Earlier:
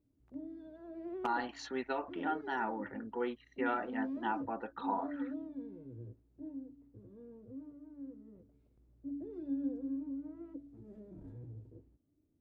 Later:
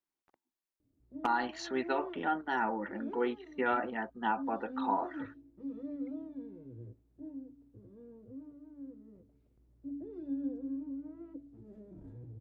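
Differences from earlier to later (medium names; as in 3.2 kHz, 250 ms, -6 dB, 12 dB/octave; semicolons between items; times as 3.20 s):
speech +4.0 dB; background: entry +0.80 s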